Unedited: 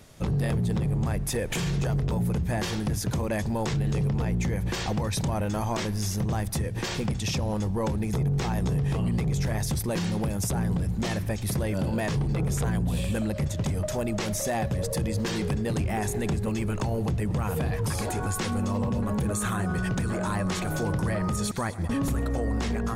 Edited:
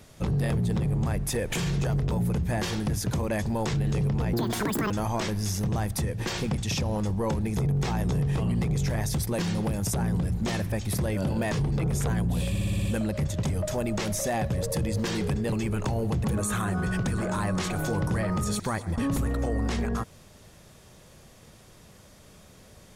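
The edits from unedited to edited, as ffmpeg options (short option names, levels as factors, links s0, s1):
-filter_complex "[0:a]asplit=11[s0][s1][s2][s3][s4][s5][s6][s7][s8][s9][s10];[s0]atrim=end=4.334[s11];[s1]atrim=start=4.33:end=5.47,asetpts=PTS-STARTPTS,asetrate=87759,aresample=44100,atrim=end_sample=25263,asetpts=PTS-STARTPTS[s12];[s2]atrim=start=5.466:end=13.122[s13];[s3]atrim=start=13.058:end=13.122[s14];[s4]atrim=start=13.058:end=13.122[s15];[s5]atrim=start=13.058:end=13.122[s16];[s6]atrim=start=13.058:end=13.122[s17];[s7]atrim=start=13.058:end=13.122[s18];[s8]atrim=start=13.058:end=15.732[s19];[s9]atrim=start=16.478:end=17.202[s20];[s10]atrim=start=19.158[s21];[s11][s12]acrossfade=d=0.004:c1=hsin:c2=hsin[s22];[s22][s13]acrossfade=d=0.004:c1=hsin:c2=hsin[s23];[s23][s14]acrossfade=d=0.004:c1=hsin:c2=hsin[s24];[s24][s15]acrossfade=d=0.004:c1=hsin:c2=hsin[s25];[s25][s16]acrossfade=d=0.004:c1=hsin:c2=hsin[s26];[s26][s17]acrossfade=d=0.004:c1=hsin:c2=hsin[s27];[s27][s18]acrossfade=d=0.004:c1=hsin:c2=hsin[s28];[s28][s19]acrossfade=d=0.004:c1=hsin:c2=hsin[s29];[s29][s20]acrossfade=d=0.004:c1=hsin:c2=hsin[s30];[s30][s21]acrossfade=d=0.004:c1=hsin:c2=hsin"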